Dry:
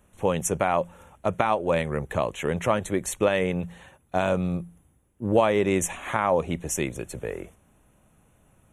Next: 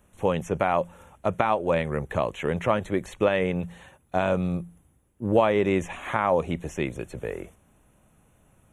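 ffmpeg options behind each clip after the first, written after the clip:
ffmpeg -i in.wav -filter_complex "[0:a]acrossover=split=3900[link_01][link_02];[link_02]acompressor=threshold=-51dB:ratio=4:attack=1:release=60[link_03];[link_01][link_03]amix=inputs=2:normalize=0" out.wav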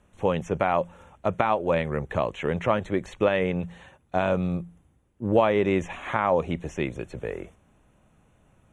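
ffmpeg -i in.wav -af "lowpass=6500" out.wav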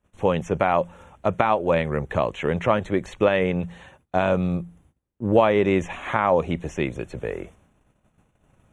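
ffmpeg -i in.wav -af "agate=range=-18dB:threshold=-59dB:ratio=16:detection=peak,volume=3dB" out.wav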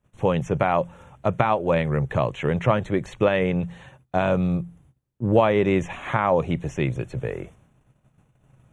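ffmpeg -i in.wav -af "equalizer=frequency=130:width_type=o:width=0.44:gain=12,volume=-1dB" out.wav

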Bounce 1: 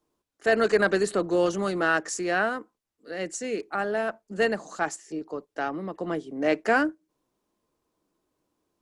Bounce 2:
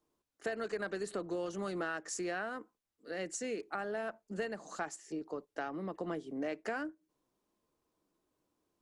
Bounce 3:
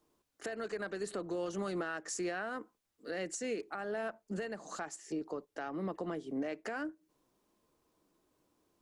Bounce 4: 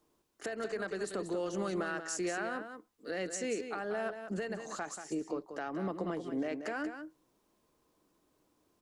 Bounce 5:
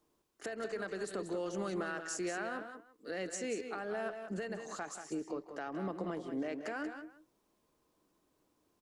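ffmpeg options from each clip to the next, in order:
ffmpeg -i in.wav -af "acompressor=threshold=-30dB:ratio=6,volume=-4.5dB" out.wav
ffmpeg -i in.wav -af "alimiter=level_in=10.5dB:limit=-24dB:level=0:latency=1:release=420,volume=-10.5dB,volume=6dB" out.wav
ffmpeg -i in.wav -af "aecho=1:1:184:0.376,volume=1.5dB" out.wav
ffmpeg -i in.wav -filter_complex "[0:a]asplit=2[link_01][link_02];[link_02]adelay=160,highpass=300,lowpass=3400,asoftclip=type=hard:threshold=-32.5dB,volume=-13dB[link_03];[link_01][link_03]amix=inputs=2:normalize=0,volume=-2.5dB" out.wav

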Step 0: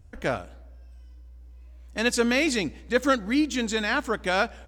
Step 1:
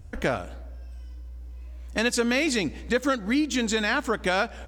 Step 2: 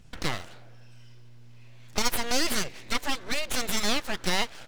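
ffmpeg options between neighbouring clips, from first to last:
ffmpeg -i in.wav -af "acompressor=threshold=-30dB:ratio=3,volume=7dB" out.wav
ffmpeg -i in.wav -af "equalizer=frequency=3200:width=0.42:gain=13,aeval=exprs='abs(val(0))':channel_layout=same,volume=-7dB" out.wav

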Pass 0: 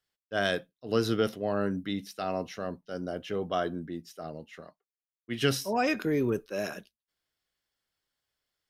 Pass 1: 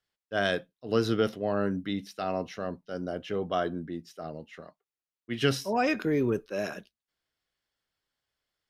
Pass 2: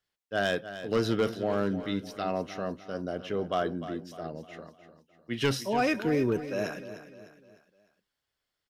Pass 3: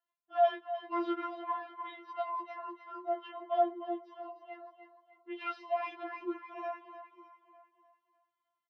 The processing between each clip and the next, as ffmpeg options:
ffmpeg -i in.wav -af "highshelf=frequency=8000:gain=-9.5,volume=1dB" out.wav
ffmpeg -i in.wav -af "asoftclip=type=hard:threshold=-19dB,aecho=1:1:302|604|906|1208:0.237|0.102|0.0438|0.0189" out.wav
ffmpeg -i in.wav -af "highpass=frequency=340:width=0.5412,highpass=frequency=340:width=1.3066,equalizer=frequency=340:width_type=q:width=4:gain=-8,equalizer=frequency=540:width_type=q:width=4:gain=8,equalizer=frequency=980:width_type=q:width=4:gain=9,equalizer=frequency=1600:width_type=q:width=4:gain=-8,equalizer=frequency=2300:width_type=q:width=4:gain=-5,lowpass=frequency=2600:width=0.5412,lowpass=frequency=2600:width=1.3066,aecho=1:1:301|602|903|1204|1505:0.211|0.104|0.0507|0.0249|0.0122,afftfilt=real='re*4*eq(mod(b,16),0)':imag='im*4*eq(mod(b,16),0)':win_size=2048:overlap=0.75" out.wav

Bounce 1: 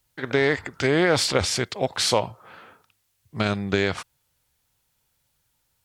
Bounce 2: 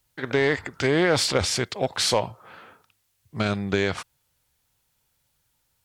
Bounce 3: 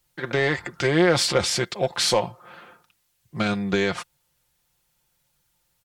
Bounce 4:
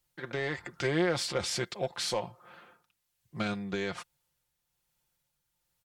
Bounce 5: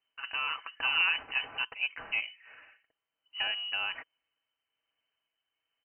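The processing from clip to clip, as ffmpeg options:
ffmpeg -i in.wav -af "asoftclip=type=tanh:threshold=-8.5dB" out.wav
ffmpeg -i in.wav -af "aecho=1:1:5.7:0.56" out.wav
ffmpeg -i in.wav -af "tremolo=f=1.2:d=0.33,volume=-8dB" out.wav
ffmpeg -i in.wav -af "lowpass=frequency=2600:width_type=q:width=0.5098,lowpass=frequency=2600:width_type=q:width=0.6013,lowpass=frequency=2600:width_type=q:width=0.9,lowpass=frequency=2600:width_type=q:width=2.563,afreqshift=-3100" out.wav

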